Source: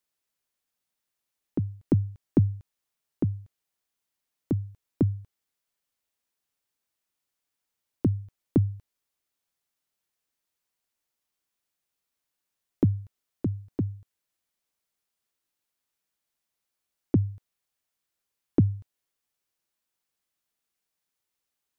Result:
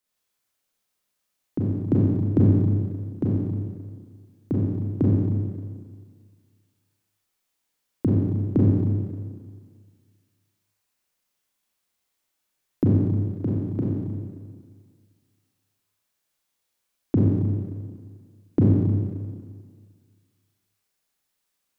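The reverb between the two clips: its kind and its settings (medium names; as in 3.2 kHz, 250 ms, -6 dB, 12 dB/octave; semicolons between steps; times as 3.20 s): Schroeder reverb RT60 1.8 s, combs from 30 ms, DRR -5.5 dB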